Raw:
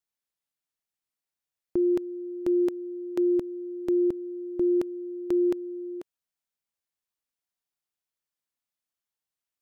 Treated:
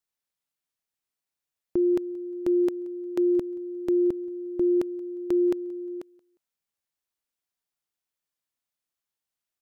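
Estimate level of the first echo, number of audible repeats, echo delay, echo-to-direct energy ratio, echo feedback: −24.0 dB, 2, 178 ms, −23.5 dB, 31%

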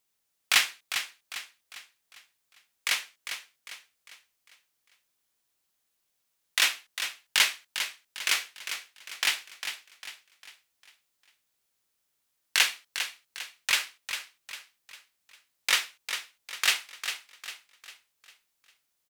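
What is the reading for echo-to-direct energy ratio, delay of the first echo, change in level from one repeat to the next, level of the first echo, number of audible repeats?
−8.0 dB, 401 ms, −7.5 dB, −9.0 dB, 4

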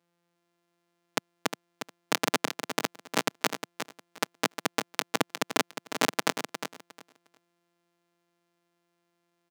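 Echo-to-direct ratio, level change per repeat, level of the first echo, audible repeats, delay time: −9.0 dB, −15.0 dB, −9.0 dB, 2, 357 ms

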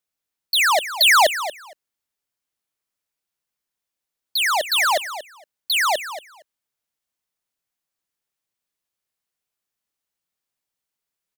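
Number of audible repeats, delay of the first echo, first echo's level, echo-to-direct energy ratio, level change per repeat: 2, 232 ms, −12.5 dB, −12.5 dB, −16.5 dB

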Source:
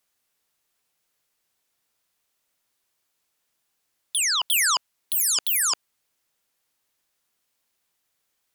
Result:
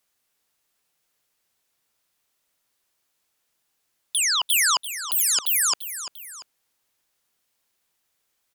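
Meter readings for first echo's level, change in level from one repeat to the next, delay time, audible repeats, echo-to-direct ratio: −12.5 dB, −6.0 dB, 343 ms, 2, −11.5 dB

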